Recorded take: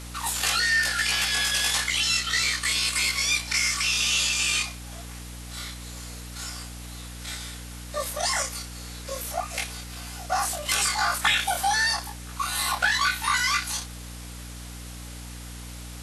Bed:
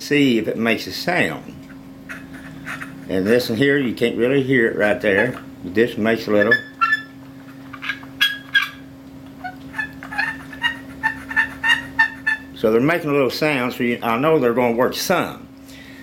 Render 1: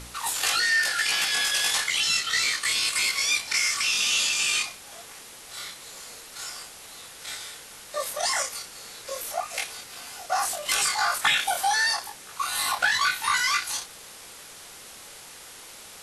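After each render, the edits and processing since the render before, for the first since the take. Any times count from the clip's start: de-hum 60 Hz, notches 5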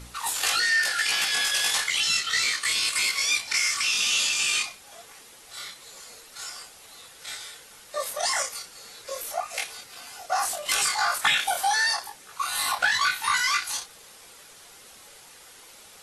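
noise reduction 6 dB, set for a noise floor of -45 dBFS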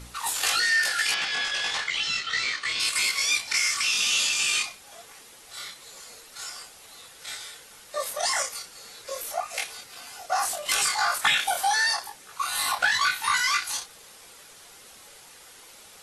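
1.14–2.80 s: distance through air 120 m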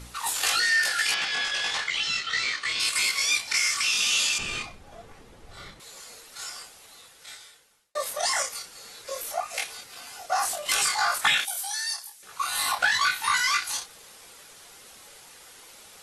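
4.38–5.80 s: tilt EQ -4.5 dB/octave; 6.58–7.95 s: fade out linear; 11.45–12.23 s: pre-emphasis filter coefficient 0.9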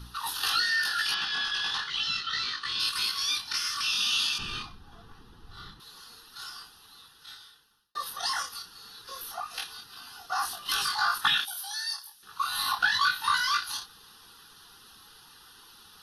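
static phaser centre 2.2 kHz, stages 6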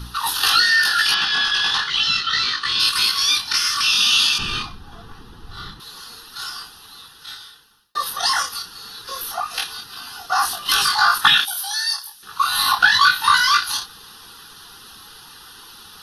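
trim +11 dB

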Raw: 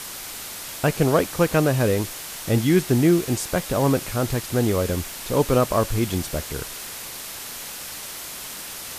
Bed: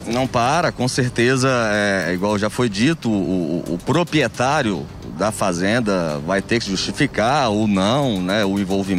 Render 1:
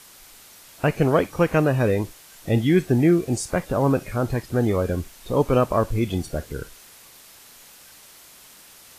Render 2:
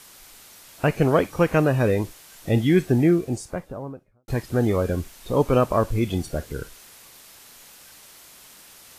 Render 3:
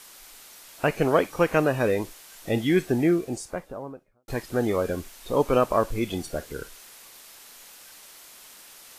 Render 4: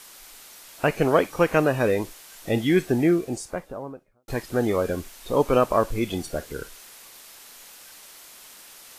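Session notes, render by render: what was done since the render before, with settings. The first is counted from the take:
noise print and reduce 13 dB
2.81–4.28 s: studio fade out
peaking EQ 90 Hz -10.5 dB 2.4 oct
trim +1.5 dB

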